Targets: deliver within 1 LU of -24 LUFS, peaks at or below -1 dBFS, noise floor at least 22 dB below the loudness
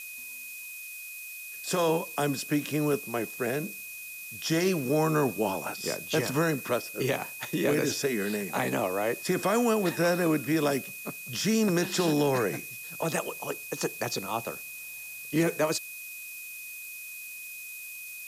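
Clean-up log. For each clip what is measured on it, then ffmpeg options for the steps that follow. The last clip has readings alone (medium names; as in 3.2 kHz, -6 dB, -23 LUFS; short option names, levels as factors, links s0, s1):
steady tone 2.5 kHz; tone level -41 dBFS; noise floor -42 dBFS; noise floor target -52 dBFS; loudness -29.5 LUFS; peak level -15.0 dBFS; loudness target -24.0 LUFS
-> -af "bandreject=f=2500:w=30"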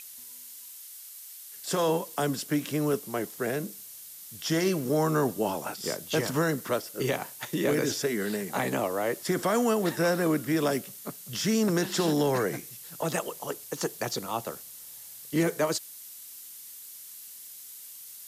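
steady tone not found; noise floor -46 dBFS; noise floor target -51 dBFS
-> -af "afftdn=nr=6:nf=-46"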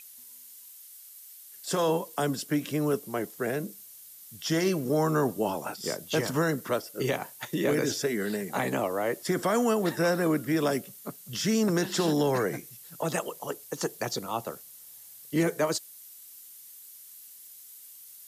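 noise floor -49 dBFS; noise floor target -51 dBFS
-> -af "afftdn=nr=6:nf=-49"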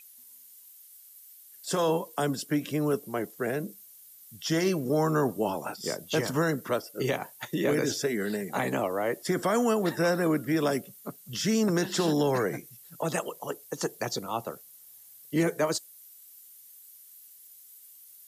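noise floor -53 dBFS; loudness -29.0 LUFS; peak level -15.0 dBFS; loudness target -24.0 LUFS
-> -af "volume=1.78"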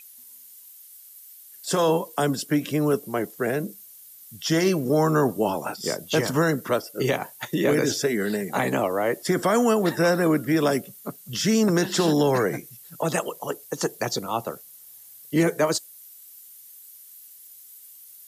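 loudness -24.0 LUFS; peak level -10.0 dBFS; noise floor -48 dBFS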